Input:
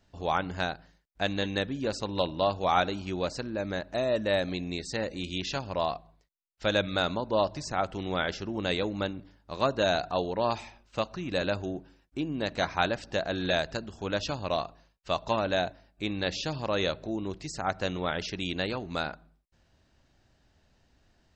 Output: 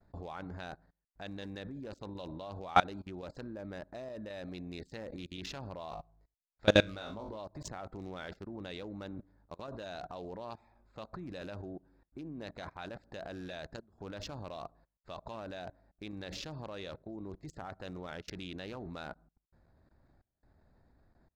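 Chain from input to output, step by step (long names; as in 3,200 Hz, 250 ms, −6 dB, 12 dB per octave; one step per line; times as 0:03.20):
adaptive Wiener filter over 15 samples
square-wave tremolo 0.93 Hz, depth 60%, duty 80%
0:05.90–0:07.37: flutter between parallel walls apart 3.3 metres, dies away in 0.21 s
output level in coarse steps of 23 dB
level +3 dB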